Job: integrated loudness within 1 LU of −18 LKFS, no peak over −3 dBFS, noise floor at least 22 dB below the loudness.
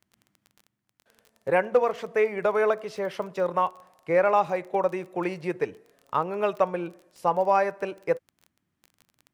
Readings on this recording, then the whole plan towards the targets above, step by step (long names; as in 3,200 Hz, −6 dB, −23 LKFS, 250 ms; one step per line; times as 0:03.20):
crackle rate 21 per second; integrated loudness −26.5 LKFS; sample peak −8.5 dBFS; target loudness −18.0 LKFS
→ click removal
level +8.5 dB
brickwall limiter −3 dBFS